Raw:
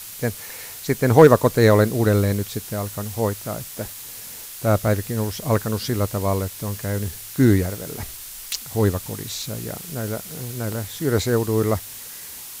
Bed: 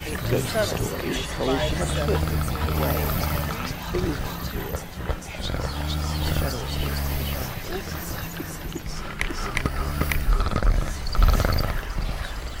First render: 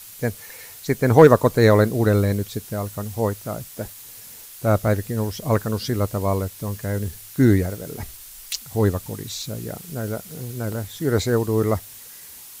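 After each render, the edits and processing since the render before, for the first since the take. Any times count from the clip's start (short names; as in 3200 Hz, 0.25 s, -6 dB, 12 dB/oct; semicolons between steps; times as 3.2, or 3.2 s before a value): denoiser 6 dB, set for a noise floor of -37 dBFS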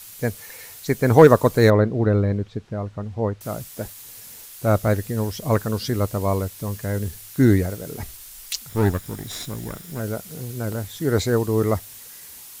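1.7–3.41 tape spacing loss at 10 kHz 31 dB; 8.69–10 minimum comb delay 0.57 ms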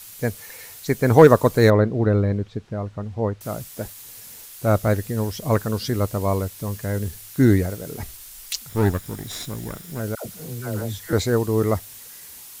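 10.15–11.13 dispersion lows, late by 0.103 s, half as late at 720 Hz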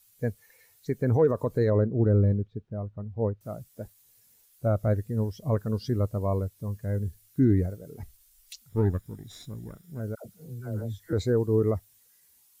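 limiter -12.5 dBFS, peak gain reduction 11 dB; spectral expander 1.5:1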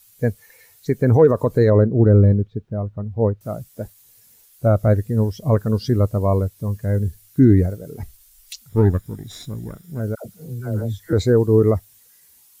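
gain +9 dB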